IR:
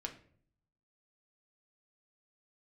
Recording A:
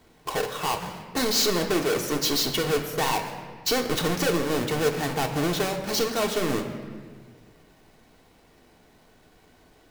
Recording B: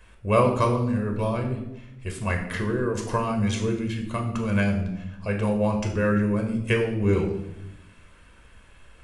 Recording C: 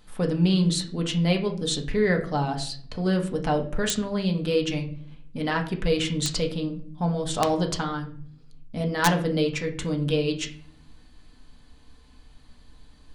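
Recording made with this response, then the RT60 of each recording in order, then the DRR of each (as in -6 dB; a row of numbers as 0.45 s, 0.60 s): C; 1.7 s, 0.85 s, 0.55 s; 2.5 dB, 2.5 dB, 2.0 dB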